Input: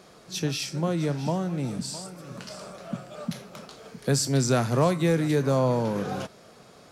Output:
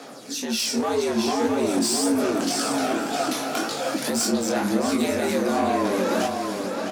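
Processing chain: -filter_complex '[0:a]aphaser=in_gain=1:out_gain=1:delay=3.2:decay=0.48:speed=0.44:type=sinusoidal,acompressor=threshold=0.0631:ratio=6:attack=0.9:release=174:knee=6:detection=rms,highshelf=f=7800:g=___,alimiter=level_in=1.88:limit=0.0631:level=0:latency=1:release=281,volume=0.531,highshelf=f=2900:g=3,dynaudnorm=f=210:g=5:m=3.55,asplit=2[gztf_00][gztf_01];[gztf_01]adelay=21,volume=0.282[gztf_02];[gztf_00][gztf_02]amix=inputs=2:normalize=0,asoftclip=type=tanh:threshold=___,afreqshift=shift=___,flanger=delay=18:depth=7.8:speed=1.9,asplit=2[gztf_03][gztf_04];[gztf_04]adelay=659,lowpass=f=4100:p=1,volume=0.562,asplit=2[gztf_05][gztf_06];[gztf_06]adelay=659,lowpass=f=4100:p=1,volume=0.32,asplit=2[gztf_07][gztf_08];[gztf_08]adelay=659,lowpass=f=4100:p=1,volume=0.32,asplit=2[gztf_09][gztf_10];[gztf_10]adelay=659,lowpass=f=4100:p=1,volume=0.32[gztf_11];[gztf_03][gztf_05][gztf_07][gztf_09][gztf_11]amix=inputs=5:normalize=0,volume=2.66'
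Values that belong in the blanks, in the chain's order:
5, 0.0596, 90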